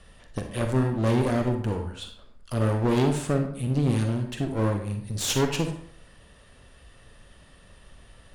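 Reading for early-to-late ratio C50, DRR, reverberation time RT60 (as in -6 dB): 6.5 dB, 5.0 dB, 0.60 s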